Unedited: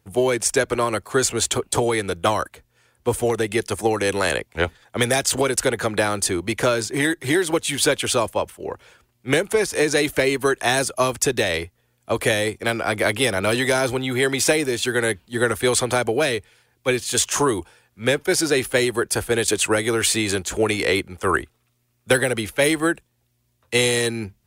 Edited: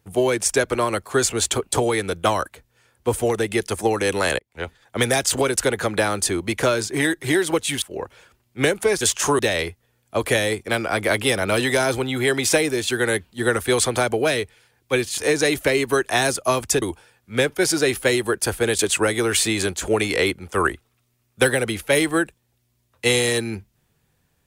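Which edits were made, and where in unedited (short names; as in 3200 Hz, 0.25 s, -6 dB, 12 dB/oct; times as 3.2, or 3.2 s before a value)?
4.39–5 fade in
7.82–8.51 cut
9.7–11.34 swap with 17.13–17.51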